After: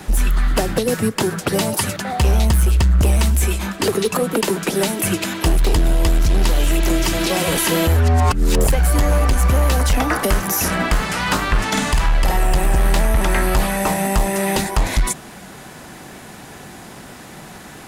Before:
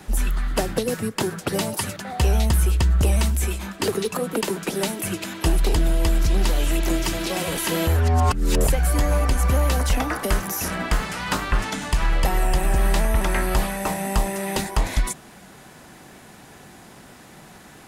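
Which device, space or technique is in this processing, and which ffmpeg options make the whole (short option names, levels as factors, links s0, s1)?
limiter into clipper: -filter_complex "[0:a]asettb=1/sr,asplit=3[s0][s1][s2];[s0]atrim=end=11.694[s3];[s1]atrim=start=11.69:end=12.37,asetpts=PTS-STARTPTS,afade=t=in:d=0.004:c=qsin,afade=t=out:st=0.676:d=0.004:c=qsin,asplit=2[s4][s5];[s5]adelay=50,volume=0.75[s6];[s4][s6]amix=inputs=2:normalize=0,atrim=end_sample=29988[s7];[s2]atrim=start=12.366[s8];[s3][s7]acrossfade=d=0.004:c1=hsin:c2=qsin[s9];[s9][s8]acrossfade=d=0.004:c1=qsin:c2=hsin,alimiter=limit=0.168:level=0:latency=1:release=183,asoftclip=type=hard:threshold=0.119,volume=2.51"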